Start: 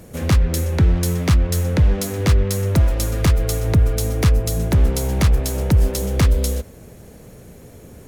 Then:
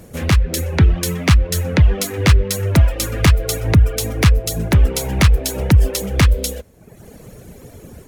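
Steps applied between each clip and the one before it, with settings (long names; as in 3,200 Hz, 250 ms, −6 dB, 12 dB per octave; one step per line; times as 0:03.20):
reverb reduction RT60 0.99 s
dynamic equaliser 2,400 Hz, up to +6 dB, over −43 dBFS, Q 0.85
automatic gain control gain up to 4.5 dB
level +1 dB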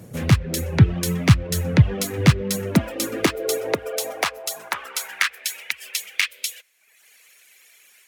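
high-pass filter sweep 120 Hz → 2,300 Hz, 0:02.09–0:05.64
level −4 dB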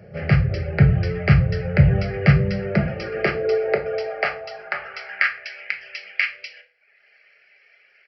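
phaser with its sweep stopped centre 1,000 Hz, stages 6
convolution reverb RT60 0.45 s, pre-delay 5 ms, DRR 3 dB
downsampling to 11,025 Hz
level +2 dB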